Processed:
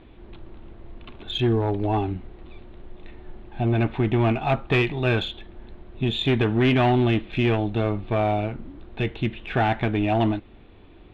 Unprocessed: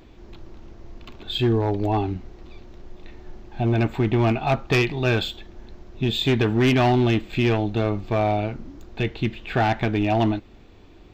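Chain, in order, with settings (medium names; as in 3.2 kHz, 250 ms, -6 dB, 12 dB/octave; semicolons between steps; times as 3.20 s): steep low-pass 3.8 kHz 48 dB/octave; in parallel at -12 dB: one-sided clip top -34 dBFS; on the sum: trim -2 dB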